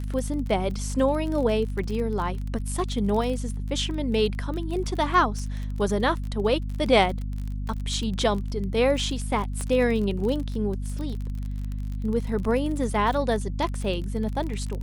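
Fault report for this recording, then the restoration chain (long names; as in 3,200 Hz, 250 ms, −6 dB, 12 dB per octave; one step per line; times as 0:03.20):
surface crackle 32 per second −30 dBFS
mains hum 50 Hz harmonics 5 −30 dBFS
0:09.61: click −18 dBFS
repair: click removal
hum removal 50 Hz, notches 5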